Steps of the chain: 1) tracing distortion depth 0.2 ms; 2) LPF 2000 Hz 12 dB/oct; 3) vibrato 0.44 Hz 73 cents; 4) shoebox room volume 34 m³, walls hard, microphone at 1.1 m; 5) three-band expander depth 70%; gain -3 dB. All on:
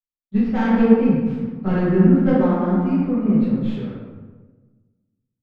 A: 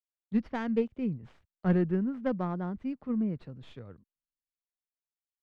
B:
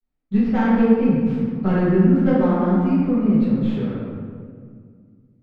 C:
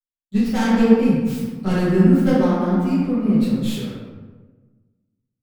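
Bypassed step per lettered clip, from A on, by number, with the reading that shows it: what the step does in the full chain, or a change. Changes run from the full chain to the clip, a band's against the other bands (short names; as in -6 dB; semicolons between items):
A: 4, momentary loudness spread change +8 LU; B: 5, crest factor change -3.0 dB; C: 2, 2 kHz band +2.0 dB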